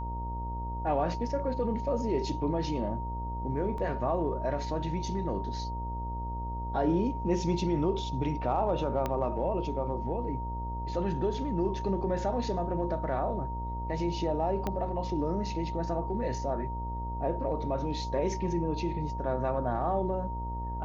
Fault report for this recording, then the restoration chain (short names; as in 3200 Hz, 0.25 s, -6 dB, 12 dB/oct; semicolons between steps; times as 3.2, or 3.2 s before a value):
buzz 60 Hz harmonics 18 -36 dBFS
tone 930 Hz -37 dBFS
3.78 gap 2.5 ms
9.06 pop -17 dBFS
14.67 pop -18 dBFS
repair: de-click; notch 930 Hz, Q 30; de-hum 60 Hz, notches 18; interpolate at 3.78, 2.5 ms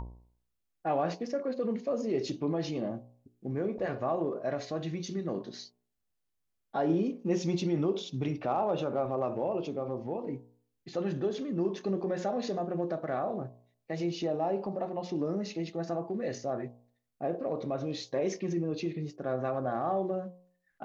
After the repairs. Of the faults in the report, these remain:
9.06 pop
14.67 pop